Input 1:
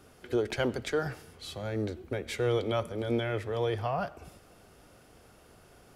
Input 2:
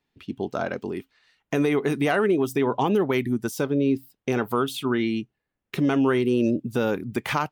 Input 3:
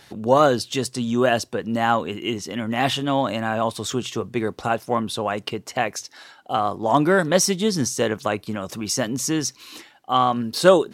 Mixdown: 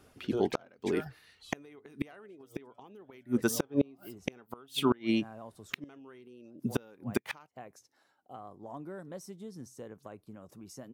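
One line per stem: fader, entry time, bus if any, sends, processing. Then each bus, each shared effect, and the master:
-3.5 dB, 0.00 s, no send, reverb removal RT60 1.8 s; auto duck -8 dB, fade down 1.80 s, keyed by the second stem
+1.5 dB, 0.00 s, no send, bass shelf 120 Hz -11 dB
-18.0 dB, 1.80 s, no send, peaking EQ 3.4 kHz -13 dB 2.7 oct; compression 2:1, threshold -26 dBFS, peak gain reduction 9 dB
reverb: none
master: inverted gate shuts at -14 dBFS, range -31 dB

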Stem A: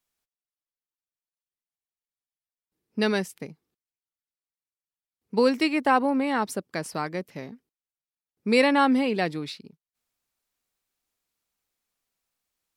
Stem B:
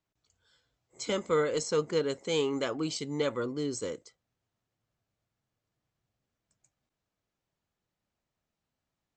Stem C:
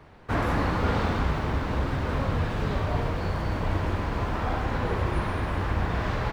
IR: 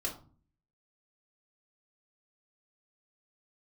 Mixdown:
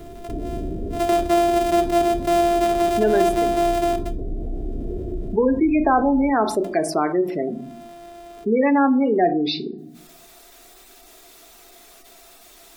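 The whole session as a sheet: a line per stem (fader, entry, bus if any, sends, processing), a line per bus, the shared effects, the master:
-1.5 dB, 0.00 s, send -8 dB, de-esser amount 80%; spectral gate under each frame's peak -15 dB strong
-2.0 dB, 0.00 s, send -9.5 dB, sorted samples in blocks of 128 samples; three bands compressed up and down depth 40%
-11.5 dB, 0.00 s, send -5.5 dB, peak limiter -20 dBFS, peak gain reduction 6.5 dB; Gaussian low-pass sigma 23 samples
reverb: on, RT60 0.40 s, pre-delay 3 ms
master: peaking EQ 100 Hz -8.5 dB 1.5 oct; small resonant body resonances 360/680/3600 Hz, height 13 dB, ringing for 55 ms; level flattener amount 50%

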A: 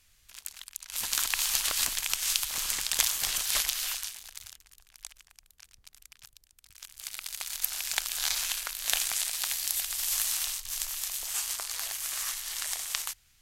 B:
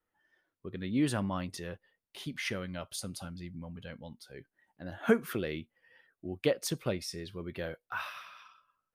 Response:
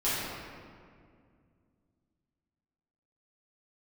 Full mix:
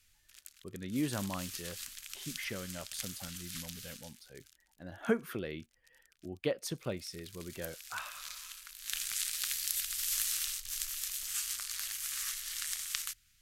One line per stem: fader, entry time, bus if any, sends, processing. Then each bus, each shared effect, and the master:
-4.0 dB, 0.00 s, no send, high-order bell 600 Hz -15.5 dB; de-hum 63.02 Hz, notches 9; auto duck -12 dB, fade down 0.55 s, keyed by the second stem
-4.5 dB, 0.00 s, no send, none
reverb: none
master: none

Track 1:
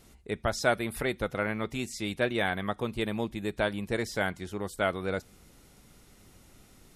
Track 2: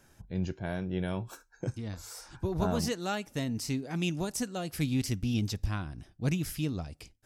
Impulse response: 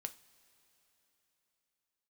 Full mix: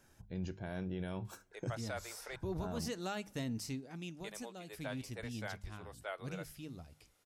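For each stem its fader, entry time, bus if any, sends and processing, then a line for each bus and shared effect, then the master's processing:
-15.0 dB, 1.25 s, muted 2.36–4.24 s, send -12.5 dB, high-pass 460 Hz 24 dB/octave
3.49 s -6 dB -> 4.03 s -15.5 dB, 0.00 s, send -11.5 dB, hum notches 50/100/150/200 Hz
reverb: on, pre-delay 3 ms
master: peak limiter -30 dBFS, peak gain reduction 9 dB

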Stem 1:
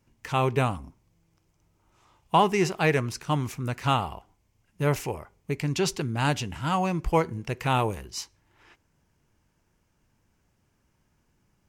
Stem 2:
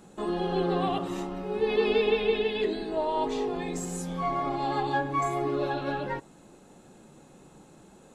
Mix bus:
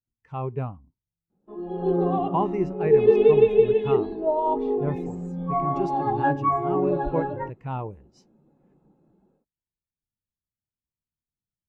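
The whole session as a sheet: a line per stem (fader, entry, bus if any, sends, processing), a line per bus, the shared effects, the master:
+1.0 dB, 0.00 s, no send, none
+0.5 dB, 1.30 s, no send, low-pass 6.2 kHz 12 dB/octave; level rider gain up to 8.5 dB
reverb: none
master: treble shelf 2.4 kHz -9 dB; spectral contrast expander 1.5:1

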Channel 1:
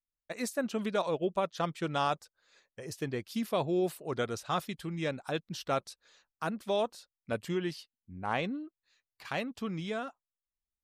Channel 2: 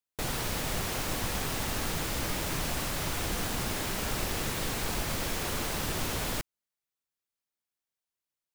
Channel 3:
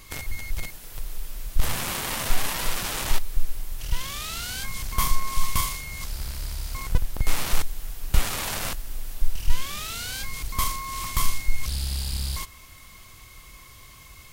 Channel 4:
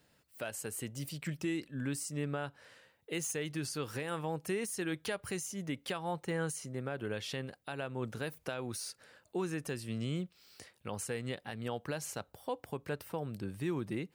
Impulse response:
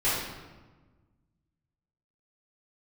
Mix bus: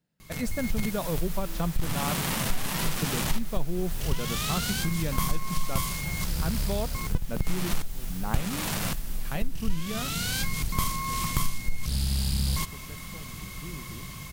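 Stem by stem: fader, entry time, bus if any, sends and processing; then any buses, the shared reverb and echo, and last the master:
-1.5 dB, 0.00 s, no send, none
-11.5 dB, 0.45 s, no send, high-pass 520 Hz; word length cut 6-bit, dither triangular
-5.0 dB, 0.20 s, no send, level rider gain up to 11 dB
-15.5 dB, 0.00 s, no send, none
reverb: none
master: peaking EQ 170 Hz +13 dB 1.1 oct; compression 2.5:1, threshold -24 dBFS, peak gain reduction 10 dB

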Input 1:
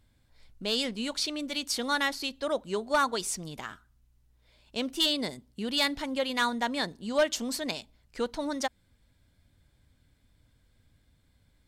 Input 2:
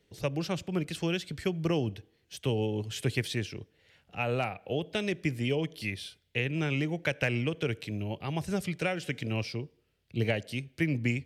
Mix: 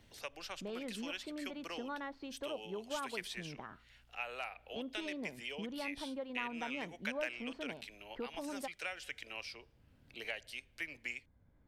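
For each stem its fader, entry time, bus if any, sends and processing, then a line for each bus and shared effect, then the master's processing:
-5.5 dB, 0.00 s, no send, low-pass 1.2 kHz 12 dB/octave; compression 1.5:1, threshold -43 dBFS, peak gain reduction 8 dB
-7.0 dB, 0.00 s, no send, high-pass 930 Hz 12 dB/octave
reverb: none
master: three bands compressed up and down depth 40%

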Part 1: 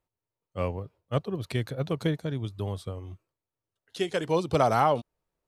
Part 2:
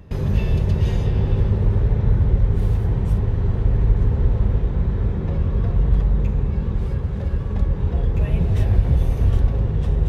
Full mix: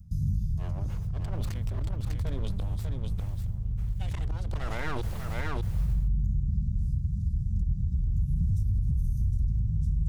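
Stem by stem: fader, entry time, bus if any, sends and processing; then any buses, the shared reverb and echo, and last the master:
+0.5 dB, 0.00 s, no send, echo send -5 dB, slow attack 488 ms; full-wave rectifier; decay stretcher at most 58 dB/s
-4.5 dB, 0.00 s, no send, no echo send, inverse Chebyshev band-stop 510–2200 Hz, stop band 60 dB; peak limiter -12 dBFS, peak gain reduction 7 dB; auto duck -7 dB, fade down 0.25 s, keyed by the first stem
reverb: none
echo: delay 597 ms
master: peak limiter -20 dBFS, peak gain reduction 7.5 dB

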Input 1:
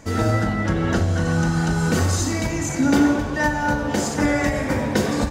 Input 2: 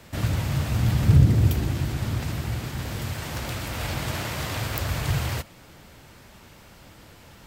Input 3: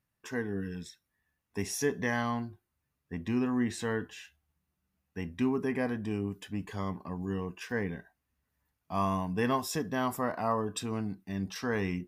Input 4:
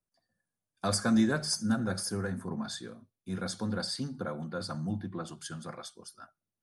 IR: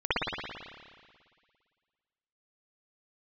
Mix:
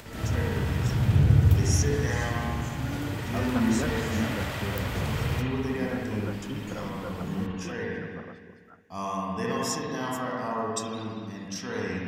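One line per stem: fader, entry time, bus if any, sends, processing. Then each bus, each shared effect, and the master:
-19.5 dB, 0.00 s, no send, none
-10.5 dB, 0.00 s, send -8 dB, upward compressor, threshold -30 dBFS
-8.0 dB, 0.00 s, send -7.5 dB, peaking EQ 6.4 kHz +14.5 dB 0.95 oct
-1.5 dB, 2.50 s, no send, low-pass 1.3 kHz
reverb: on, RT60 1.9 s, pre-delay 55 ms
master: none

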